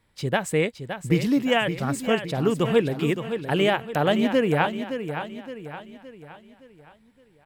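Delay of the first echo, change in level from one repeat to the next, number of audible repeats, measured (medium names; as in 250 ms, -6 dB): 567 ms, -7.0 dB, 4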